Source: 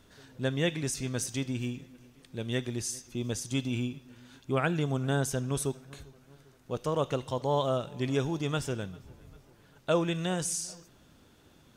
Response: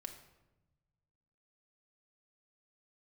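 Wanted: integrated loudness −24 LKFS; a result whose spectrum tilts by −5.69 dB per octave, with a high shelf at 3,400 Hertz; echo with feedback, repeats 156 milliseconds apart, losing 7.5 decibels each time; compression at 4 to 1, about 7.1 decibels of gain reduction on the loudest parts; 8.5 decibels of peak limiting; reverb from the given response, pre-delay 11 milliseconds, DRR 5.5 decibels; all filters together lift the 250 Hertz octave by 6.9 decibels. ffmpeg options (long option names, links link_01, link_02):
-filter_complex "[0:a]equalizer=frequency=250:width_type=o:gain=8.5,highshelf=frequency=3400:gain=-4,acompressor=threshold=-28dB:ratio=4,alimiter=level_in=1dB:limit=-24dB:level=0:latency=1,volume=-1dB,aecho=1:1:156|312|468|624|780:0.422|0.177|0.0744|0.0312|0.0131,asplit=2[link_01][link_02];[1:a]atrim=start_sample=2205,adelay=11[link_03];[link_02][link_03]afir=irnorm=-1:irlink=0,volume=-1.5dB[link_04];[link_01][link_04]amix=inputs=2:normalize=0,volume=10dB"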